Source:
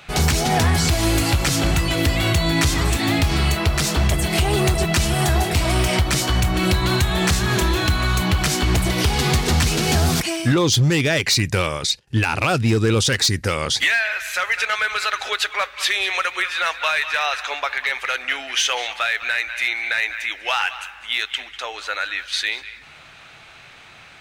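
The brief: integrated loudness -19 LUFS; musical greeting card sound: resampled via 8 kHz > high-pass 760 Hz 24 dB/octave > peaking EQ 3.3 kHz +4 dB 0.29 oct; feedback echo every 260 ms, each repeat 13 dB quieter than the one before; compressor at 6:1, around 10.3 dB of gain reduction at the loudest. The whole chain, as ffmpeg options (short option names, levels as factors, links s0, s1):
-af "acompressor=threshold=0.0562:ratio=6,aecho=1:1:260|520|780:0.224|0.0493|0.0108,aresample=8000,aresample=44100,highpass=f=760:w=0.5412,highpass=f=760:w=1.3066,equalizer=f=3300:t=o:w=0.29:g=4,volume=3.35"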